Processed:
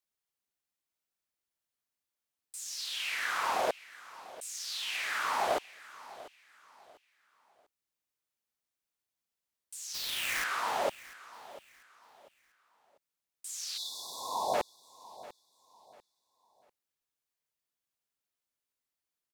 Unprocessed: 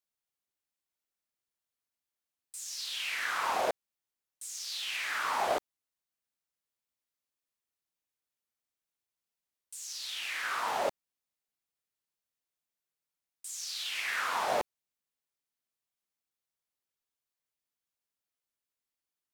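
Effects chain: 9.94–10.44 s: square wave that keeps the level; 13.78–14.54 s: spectral selection erased 1.1–3.4 kHz; feedback delay 694 ms, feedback 32%, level -18 dB

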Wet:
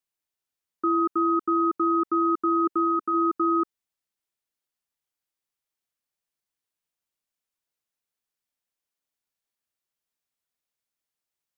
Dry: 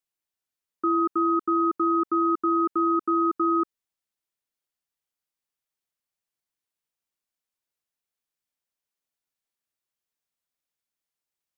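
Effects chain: 2.64–3.13 s: peaking EQ 340 Hz +3 dB -> -6.5 dB 0.52 oct

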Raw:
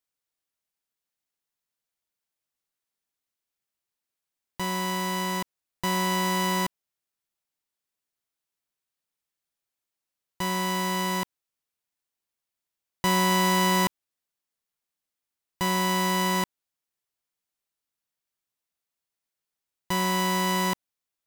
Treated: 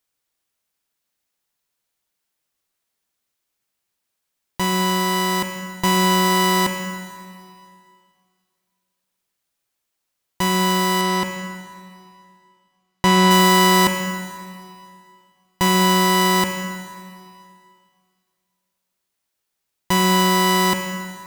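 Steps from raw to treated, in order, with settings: 11.01–13.31 s: treble shelf 8.6 kHz -11.5 dB; plate-style reverb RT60 2.3 s, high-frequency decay 0.9×, DRR 6.5 dB; trim +8.5 dB

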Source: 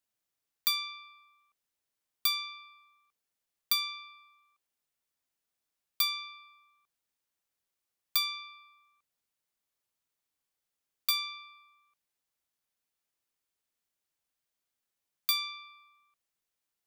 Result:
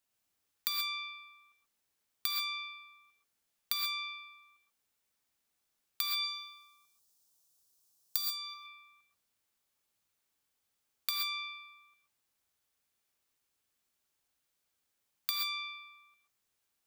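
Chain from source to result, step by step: 6.13–8.54 s: FFT filter 1 kHz 0 dB, 2.1 kHz -9 dB, 5.4 kHz +10 dB; compression 10:1, threshold -34 dBFS, peak gain reduction 19 dB; gated-style reverb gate 150 ms rising, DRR 1.5 dB; trim +2.5 dB

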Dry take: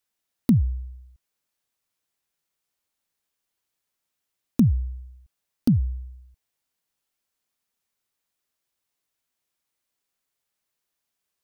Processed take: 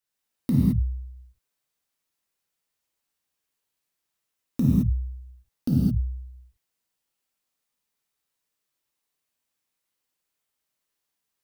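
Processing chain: gated-style reverb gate 240 ms flat, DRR -6 dB; trim -7 dB

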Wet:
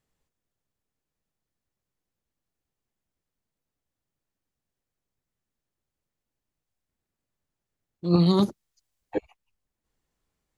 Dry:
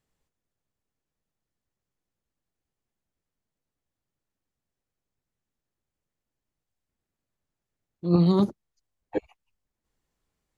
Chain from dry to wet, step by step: 8.04–9.15 s: treble shelf 2 kHz +9 dB

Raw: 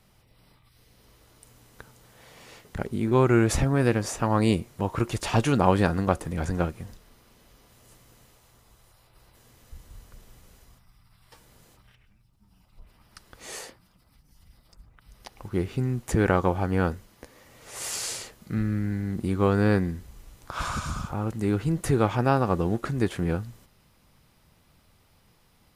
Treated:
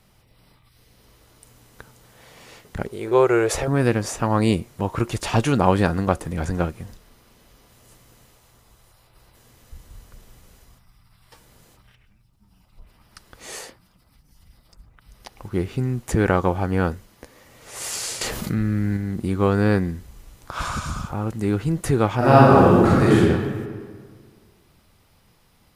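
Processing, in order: 2.89–3.68 s: resonant low shelf 330 Hz -9.5 dB, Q 3; 18.21–18.97 s: level flattener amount 70%; 22.17–23.16 s: reverb throw, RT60 1.8 s, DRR -8 dB; trim +3 dB

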